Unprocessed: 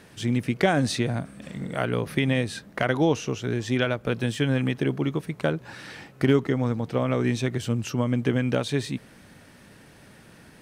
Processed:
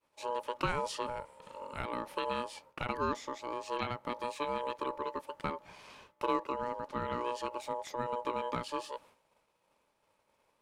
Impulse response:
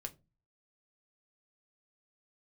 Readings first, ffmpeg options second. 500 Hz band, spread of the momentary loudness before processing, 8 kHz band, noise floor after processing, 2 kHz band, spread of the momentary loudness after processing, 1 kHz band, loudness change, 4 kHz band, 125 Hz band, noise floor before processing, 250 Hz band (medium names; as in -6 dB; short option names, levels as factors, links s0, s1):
-10.5 dB, 10 LU, -12.5 dB, -76 dBFS, -12.5 dB, 10 LU, -0.5 dB, -11.5 dB, -11.0 dB, -22.5 dB, -52 dBFS, -18.0 dB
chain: -af "agate=range=0.0224:threshold=0.00891:ratio=3:detection=peak,aeval=exprs='val(0)*sin(2*PI*730*n/s)':c=same,volume=0.355"